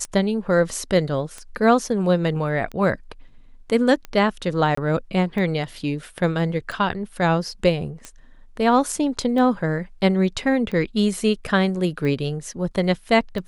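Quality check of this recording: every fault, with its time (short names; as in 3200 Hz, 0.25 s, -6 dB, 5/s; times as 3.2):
tick 45 rpm -19 dBFS
4.75–4.77 gap 24 ms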